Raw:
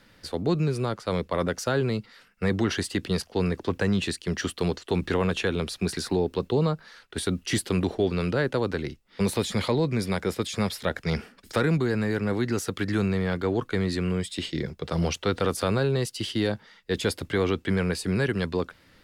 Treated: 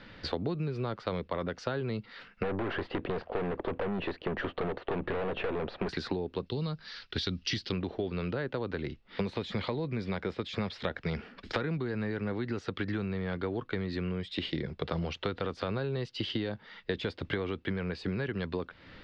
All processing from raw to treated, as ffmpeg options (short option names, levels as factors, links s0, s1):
-filter_complex "[0:a]asettb=1/sr,asplit=3[s0][s1][s2];[s0]atrim=end=2.434[s3];[s1]atrim=start=2.43:end=5.89,asetpts=PTS-STARTPTS,afade=t=in:d=0.004:c=qsin,afade=t=out:st=3.456:d=0.004:c=qsin,equalizer=f=600:w=0.66:g=14.5,aeval=exprs='(tanh(20*val(0)+0.45)-tanh(0.45))/20':c=same,lowpass=2500[s4];[s2]atrim=start=5.886[s5];[s3][s4]acrossfade=d=0.004:c1=hsin:c2=qsin[s6];[s6][s5]acrossfade=d=0.004:c1=qsin:c2=hsin,asettb=1/sr,asplit=3[s7][s8][s9];[s7]atrim=end=6.464[s10];[s8]atrim=start=6.46:end=7.72,asetpts=PTS-STARTPTS,afade=t=in:d=0.004:c=qsin,afade=t=out:st=1.256:d=0.004:c=qsin,lowpass=f=5300:t=q:w=3.6,equalizer=f=660:w=0.41:g=-9[s11];[s9]atrim=start=7.716[s12];[s10][s11]acrossfade=d=0.004:c1=hsin:c2=qsin[s13];[s13][s12]acrossfade=d=0.004:c1=qsin:c2=hsin,lowpass=f=4100:w=0.5412,lowpass=f=4100:w=1.3066,acompressor=threshold=0.0158:ratio=12,volume=2.11"